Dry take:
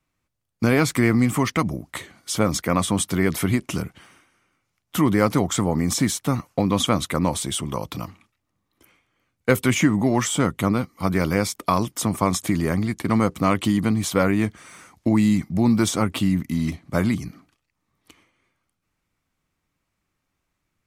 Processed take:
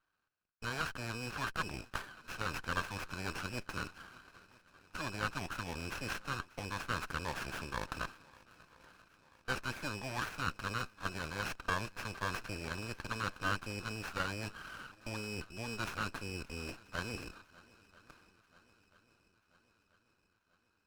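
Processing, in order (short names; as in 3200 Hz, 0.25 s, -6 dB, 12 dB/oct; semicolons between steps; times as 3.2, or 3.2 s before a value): FFT order left unsorted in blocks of 16 samples; reverse; compressor 6:1, threshold -27 dBFS, peak gain reduction 14.5 dB; reverse; double band-pass 2000 Hz, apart 0.73 oct; swung echo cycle 0.985 s, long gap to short 1.5:1, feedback 55%, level -23 dB; running maximum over 9 samples; gain +12 dB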